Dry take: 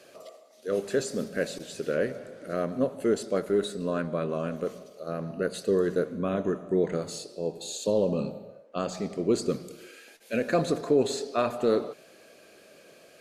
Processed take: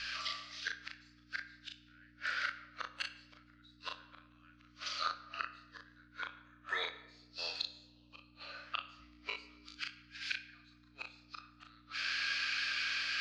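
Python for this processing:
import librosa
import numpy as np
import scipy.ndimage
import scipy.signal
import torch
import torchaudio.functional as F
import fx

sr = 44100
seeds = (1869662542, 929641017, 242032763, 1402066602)

y = scipy.signal.sosfilt(scipy.signal.ellip(3, 1.0, 70, [1400.0, 5100.0], 'bandpass', fs=sr, output='sos'), x)
y = fx.rider(y, sr, range_db=4, speed_s=0.5)
y = fx.gate_flip(y, sr, shuts_db=-41.0, range_db=-42)
y = fx.add_hum(y, sr, base_hz=60, snr_db=16)
y = fx.doubler(y, sr, ms=20.0, db=-3, at=(8.97, 9.8))
y = fx.room_early_taps(y, sr, ms=(37, 60), db=(-4.0, -16.0))
y = fx.room_shoebox(y, sr, seeds[0], volume_m3=530.0, walls='mixed', distance_m=0.39)
y = y * librosa.db_to_amplitude(18.0)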